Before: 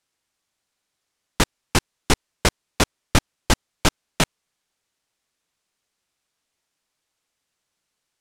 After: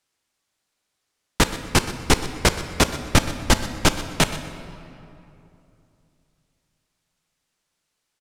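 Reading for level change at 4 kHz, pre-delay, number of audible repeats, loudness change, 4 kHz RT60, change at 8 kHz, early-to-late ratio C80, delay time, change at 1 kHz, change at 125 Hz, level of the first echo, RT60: +1.5 dB, 14 ms, 1, +1.5 dB, 1.7 s, +1.5 dB, 10.5 dB, 124 ms, +1.5 dB, +1.5 dB, −16.0 dB, 2.8 s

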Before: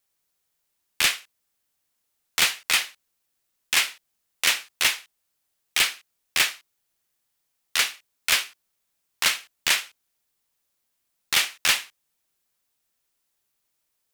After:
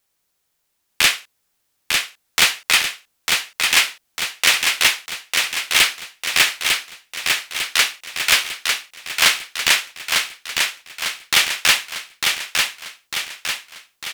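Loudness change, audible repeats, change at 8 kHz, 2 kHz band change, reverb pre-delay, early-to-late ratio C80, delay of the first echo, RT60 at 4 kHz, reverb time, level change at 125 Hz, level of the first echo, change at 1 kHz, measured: +5.0 dB, 6, +7.0 dB, +8.0 dB, no reverb audible, no reverb audible, 900 ms, no reverb audible, no reverb audible, +8.5 dB, −4.0 dB, +8.5 dB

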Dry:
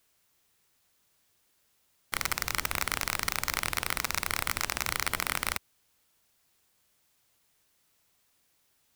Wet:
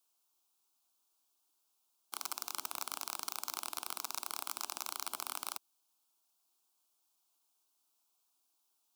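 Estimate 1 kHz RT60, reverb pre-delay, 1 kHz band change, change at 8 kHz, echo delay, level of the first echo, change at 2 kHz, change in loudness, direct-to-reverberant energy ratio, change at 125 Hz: no reverb audible, no reverb audible, −8.5 dB, −7.0 dB, no echo audible, no echo audible, −18.5 dB, −9.5 dB, no reverb audible, below −30 dB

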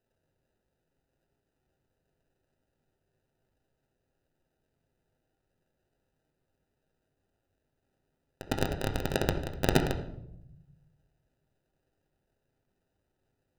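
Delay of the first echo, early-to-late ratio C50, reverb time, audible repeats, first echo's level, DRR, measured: no echo audible, 8.0 dB, 0.80 s, no echo audible, no echo audible, 3.0 dB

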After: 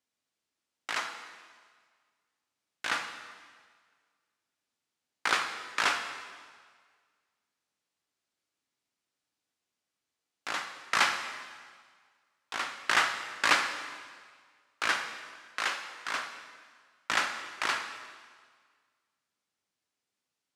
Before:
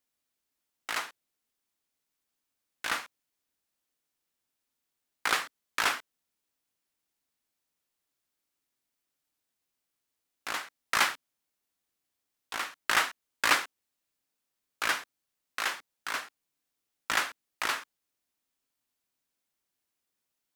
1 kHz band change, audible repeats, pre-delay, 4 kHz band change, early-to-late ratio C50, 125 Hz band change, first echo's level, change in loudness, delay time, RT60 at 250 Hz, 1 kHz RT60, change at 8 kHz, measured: +1.0 dB, no echo audible, 8 ms, +0.5 dB, 7.5 dB, +0.5 dB, no echo audible, 0.0 dB, no echo audible, 1.6 s, 1.7 s, −2.0 dB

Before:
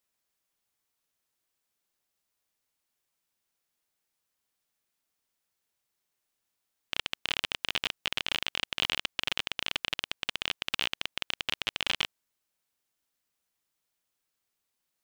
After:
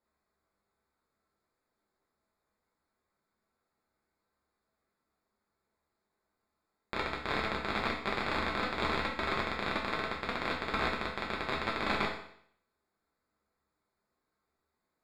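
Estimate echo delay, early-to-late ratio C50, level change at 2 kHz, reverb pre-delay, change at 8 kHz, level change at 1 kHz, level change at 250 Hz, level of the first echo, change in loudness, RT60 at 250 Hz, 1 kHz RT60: no echo audible, 4.5 dB, 0.0 dB, 5 ms, −12.5 dB, +8.5 dB, +10.5 dB, no echo audible, −2.0 dB, 0.65 s, 0.65 s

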